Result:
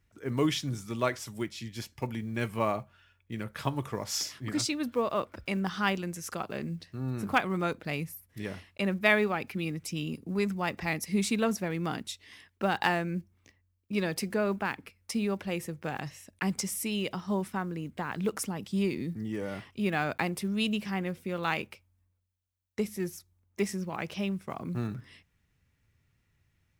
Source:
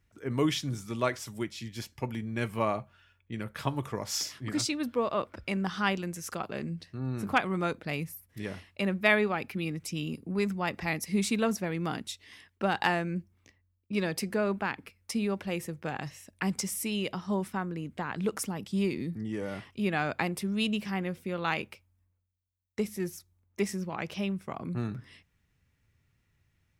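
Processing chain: block floating point 7-bit

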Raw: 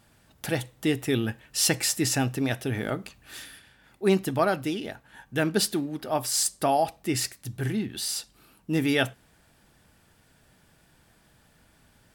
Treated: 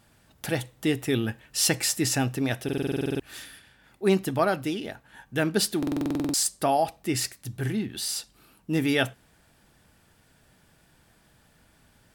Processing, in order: stuck buffer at 2.64/5.78, samples 2048, times 11

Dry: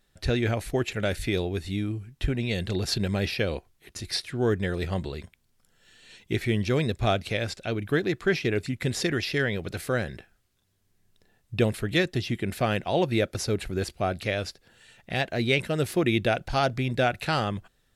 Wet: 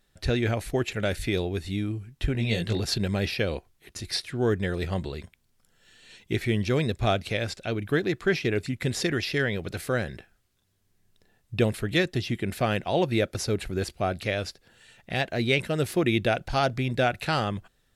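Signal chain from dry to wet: 2.33–2.8 doubler 18 ms -3 dB

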